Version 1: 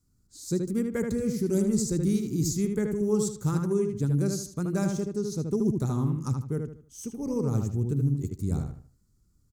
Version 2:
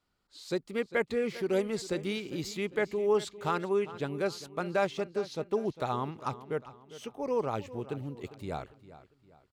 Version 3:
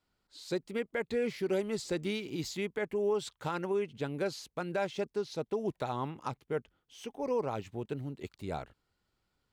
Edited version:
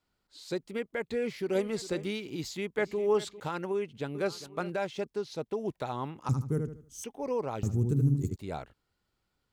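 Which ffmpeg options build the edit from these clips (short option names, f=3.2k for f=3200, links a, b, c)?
-filter_complex "[1:a]asplit=3[a][b][c];[0:a]asplit=2[d][e];[2:a]asplit=6[f][g][h][i][j][k];[f]atrim=end=1.552[l];[a]atrim=start=1.548:end=2.062[m];[g]atrim=start=2.058:end=2.782[n];[b]atrim=start=2.778:end=3.402[o];[h]atrim=start=3.398:end=4.152[p];[c]atrim=start=4.148:end=4.702[q];[i]atrim=start=4.698:end=6.292[r];[d]atrim=start=6.288:end=7.042[s];[j]atrim=start=7.038:end=7.632[t];[e]atrim=start=7.628:end=8.362[u];[k]atrim=start=8.358[v];[l][m]acrossfade=d=0.004:c1=hsin:c2=hsin[w];[w][n]acrossfade=d=0.004:c1=hsin:c2=hsin[x];[x][o]acrossfade=d=0.004:c1=hsin:c2=hsin[y];[y][p]acrossfade=d=0.004:c1=hsin:c2=hsin[z];[z][q]acrossfade=d=0.004:c1=hsin:c2=hsin[aa];[aa][r]acrossfade=d=0.004:c1=hsin:c2=hsin[ab];[ab][s]acrossfade=d=0.004:c1=hsin:c2=hsin[ac];[ac][t]acrossfade=d=0.004:c1=hsin:c2=hsin[ad];[ad][u]acrossfade=d=0.004:c1=hsin:c2=hsin[ae];[ae][v]acrossfade=d=0.004:c1=hsin:c2=hsin"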